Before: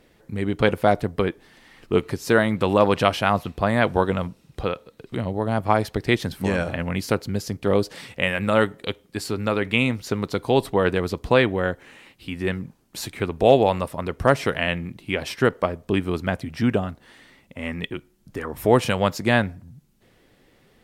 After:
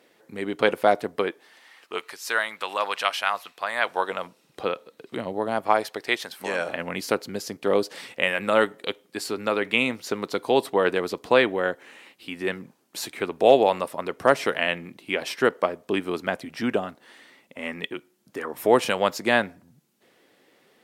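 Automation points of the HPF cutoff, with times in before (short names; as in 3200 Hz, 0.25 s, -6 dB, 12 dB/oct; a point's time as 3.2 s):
1.13 s 330 Hz
2.13 s 1100 Hz
3.67 s 1100 Hz
4.68 s 290 Hz
5.42 s 290 Hz
6.28 s 720 Hz
6.87 s 300 Hz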